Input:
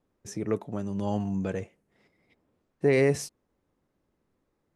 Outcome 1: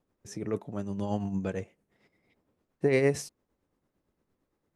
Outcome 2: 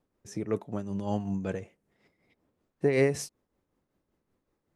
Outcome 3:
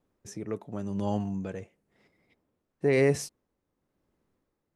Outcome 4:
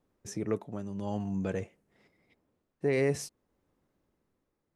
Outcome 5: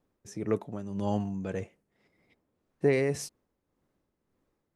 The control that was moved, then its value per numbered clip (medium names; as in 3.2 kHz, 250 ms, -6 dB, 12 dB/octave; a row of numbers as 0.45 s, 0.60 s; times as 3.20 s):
tremolo, rate: 8.8 Hz, 5.3 Hz, 0.96 Hz, 0.53 Hz, 1.8 Hz